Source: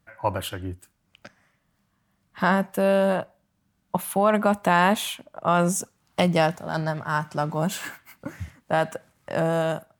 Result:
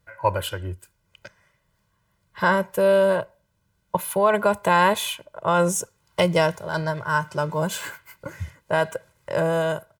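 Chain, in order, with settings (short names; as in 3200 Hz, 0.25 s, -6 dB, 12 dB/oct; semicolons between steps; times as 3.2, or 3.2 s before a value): comb 2 ms, depth 77%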